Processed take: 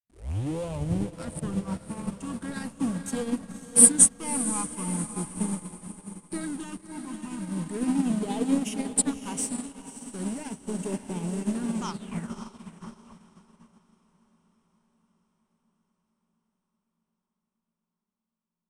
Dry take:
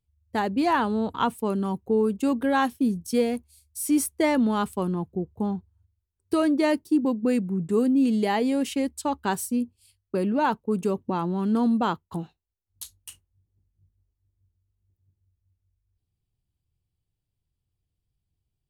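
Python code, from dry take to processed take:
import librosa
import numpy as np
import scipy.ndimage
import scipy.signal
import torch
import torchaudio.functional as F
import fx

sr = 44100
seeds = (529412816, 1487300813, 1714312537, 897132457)

p1 = fx.tape_start_head(x, sr, length_s=1.14)
p2 = scipy.signal.sosfilt(scipy.signal.butter(4, 78.0, 'highpass', fs=sr, output='sos'), p1)
p3 = fx.peak_eq(p2, sr, hz=170.0, db=4.0, octaves=0.35)
p4 = fx.leveller(p3, sr, passes=3)
p5 = fx.phaser_stages(p4, sr, stages=8, low_hz=480.0, high_hz=1600.0, hz=0.39, feedback_pct=20)
p6 = fx.rev_spring(p5, sr, rt60_s=3.9, pass_ms=(31, 55), chirp_ms=75, drr_db=18.0)
p7 = fx.schmitt(p6, sr, flips_db=-35.5)
p8 = p6 + F.gain(torch.from_numpy(p7), -8.5).numpy()
p9 = fx.filter_sweep_lowpass(p8, sr, from_hz=9100.0, to_hz=1100.0, start_s=11.74, end_s=12.37, q=7.0)
p10 = p9 + fx.echo_diffused(p9, sr, ms=567, feedback_pct=66, wet_db=-5, dry=0)
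p11 = fx.upward_expand(p10, sr, threshold_db=-27.0, expansion=2.5)
y = F.gain(torch.from_numpy(p11), -4.5).numpy()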